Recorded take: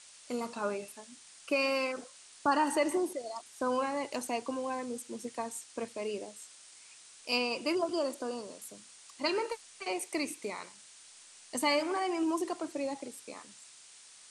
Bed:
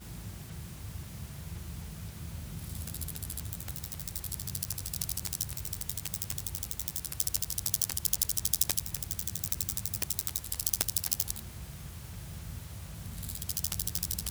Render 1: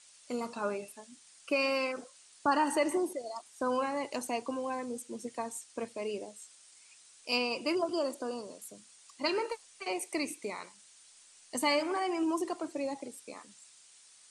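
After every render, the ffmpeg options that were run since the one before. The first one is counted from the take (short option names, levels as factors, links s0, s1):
-af "afftdn=nr=6:nf=-55"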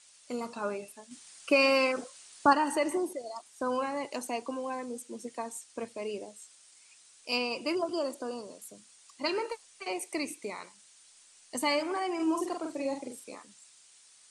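-filter_complex "[0:a]asettb=1/sr,asplit=3[s0][s1][s2];[s0]atrim=end=4.054[s3];[s1]atrim=start=4.05:end=5.65,asetpts=PTS-STARTPTS,afade=t=in:d=0.004:c=qsin,afade=t=out:st=1.596:d=0.004:c=qsin,highpass=150[s4];[s2]atrim=start=5.646[s5];[s3][s4]acrossfade=d=0.004:c1=hsin:c2=qsin[s6];[s6][s5]acrossfade=d=0.004:c1=qsin:c2=hsin,asettb=1/sr,asplit=3[s7][s8][s9];[s7]atrim=end=12.154[s10];[s8]atrim=start=12.15:end=13.35,asetpts=PTS-STARTPTS,afade=t=in:d=0.004:c=qsin,afade=t=out:st=1.196:d=0.004:c=qsin,asplit=2[s11][s12];[s12]adelay=44,volume=0.668[s13];[s11][s13]amix=inputs=2:normalize=0,atrim=end_sample=52920[s14];[s9]atrim=start=13.346[s15];[s10][s14]acrossfade=d=0.004:c1=hsin:c2=qsin[s16];[s16][s15]acrossfade=d=0.004:c1=qsin:c2=hsin,asplit=3[s17][s18][s19];[s17]atrim=end=1.112[s20];[s18]atrim=start=1.108:end=2.532,asetpts=PTS-STARTPTS,volume=2[s21];[s19]atrim=start=2.528[s22];[s20][s21]acrossfade=d=0.004:c1=hsin:c2=hsin[s23];[s23][s22]acrossfade=d=0.004:c1=hsin:c2=hsin"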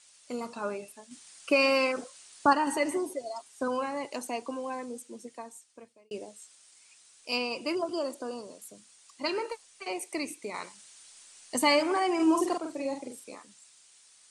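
-filter_complex "[0:a]asettb=1/sr,asplit=3[s0][s1][s2];[s0]atrim=end=2.664[s3];[s1]atrim=start=2.66:end=3.68,asetpts=PTS-STARTPTS,afade=t=in:d=0.004:c=qsin,afade=t=out:st=1.016:d=0.004:c=qsin,aecho=1:1:7.4:0.65,atrim=end_sample=44982[s4];[s2]atrim=start=3.676[s5];[s3][s4]acrossfade=d=0.004:c1=hsin:c2=qsin[s6];[s6][s5]acrossfade=d=0.004:c1=qsin:c2=hsin,asettb=1/sr,asplit=3[s7][s8][s9];[s7]atrim=end=10.544[s10];[s8]atrim=start=10.54:end=12.58,asetpts=PTS-STARTPTS,afade=t=in:d=0.004:c=qsin,afade=t=out:st=2.036:d=0.004:c=qsin,acontrast=29[s11];[s9]atrim=start=12.576[s12];[s10][s11]acrossfade=d=0.004:c1=hsin:c2=qsin[s13];[s13][s12]acrossfade=d=0.004:c1=qsin:c2=hsin,asplit=2[s14][s15];[s14]atrim=end=6.11,asetpts=PTS-STARTPTS,afade=t=out:st=4.82:d=1.29[s16];[s15]atrim=start=6.11,asetpts=PTS-STARTPTS,afade=t=in:d=0.004:c=hsin[s17];[s16][s17]concat=n=2:v=0:a=1"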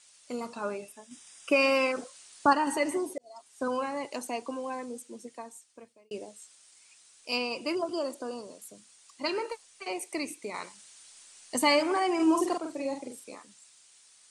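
-filter_complex "[0:a]asettb=1/sr,asplit=3[s0][s1][s2];[s0]atrim=end=0.874[s3];[s1]atrim=start=0.87:end=1.88,asetpts=PTS-STARTPTS,afade=t=in:d=0.004:c=qsin,afade=t=out:st=1.006:d=0.004:c=qsin,asuperstop=centerf=4300:order=12:qfactor=7.4[s4];[s2]atrim=start=1.876[s5];[s3][s4]acrossfade=d=0.004:c1=hsin:c2=qsin[s6];[s6][s5]acrossfade=d=0.004:c1=qsin:c2=hsin,asplit=2[s7][s8];[s7]atrim=end=3.18,asetpts=PTS-STARTPTS,afade=t=out:st=3.176:d=0.004:c=hsin[s9];[s8]atrim=start=3.18,asetpts=PTS-STARTPTS,afade=t=in:d=0.49[s10];[s9][s10]concat=n=2:v=0:a=1"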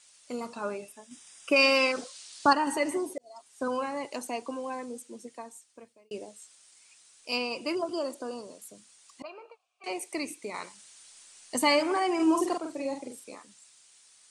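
-filter_complex "[0:a]asettb=1/sr,asplit=3[s0][s1][s2];[s0]atrim=end=1.564[s3];[s1]atrim=start=1.56:end=2.53,asetpts=PTS-STARTPTS,afade=t=in:d=0.004:c=qsin,afade=t=out:st=0.966:d=0.004:c=qsin,equalizer=f=4400:t=o:w=1.4:g=9[s4];[s2]atrim=start=2.526[s5];[s3][s4]acrossfade=d=0.004:c1=hsin:c2=qsin[s6];[s6][s5]acrossfade=d=0.004:c1=qsin:c2=hsin,asettb=1/sr,asplit=3[s7][s8][s9];[s7]atrim=end=9.224[s10];[s8]atrim=start=9.22:end=9.84,asetpts=PTS-STARTPTS,afade=t=in:d=0.004:c=qsin,afade=t=out:st=0.616:d=0.004:c=qsin,asplit=3[s11][s12][s13];[s11]bandpass=f=730:t=q:w=8,volume=1[s14];[s12]bandpass=f=1090:t=q:w=8,volume=0.501[s15];[s13]bandpass=f=2440:t=q:w=8,volume=0.355[s16];[s14][s15][s16]amix=inputs=3:normalize=0[s17];[s9]atrim=start=9.836[s18];[s10][s17]acrossfade=d=0.004:c1=hsin:c2=qsin[s19];[s19][s18]acrossfade=d=0.004:c1=qsin:c2=hsin"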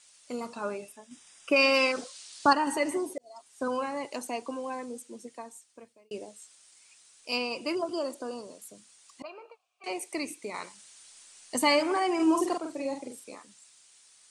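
-filter_complex "[0:a]asettb=1/sr,asplit=3[s0][s1][s2];[s0]atrim=end=0.964[s3];[s1]atrim=start=0.96:end=1.74,asetpts=PTS-STARTPTS,afade=t=in:d=0.004:c=qsin,afade=t=out:st=0.776:d=0.004:c=qsin,highshelf=f=4800:g=-5[s4];[s2]atrim=start=1.736[s5];[s3][s4]acrossfade=d=0.004:c1=hsin:c2=qsin[s6];[s6][s5]acrossfade=d=0.004:c1=qsin:c2=hsin"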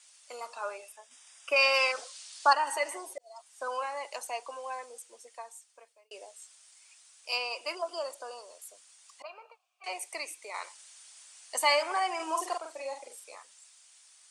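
-af "highpass=f=580:w=0.5412,highpass=f=580:w=1.3066,bandreject=f=4000:w=30"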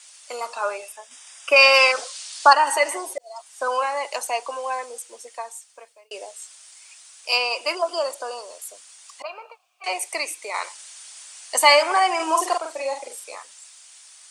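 -af "volume=3.55,alimiter=limit=0.891:level=0:latency=1"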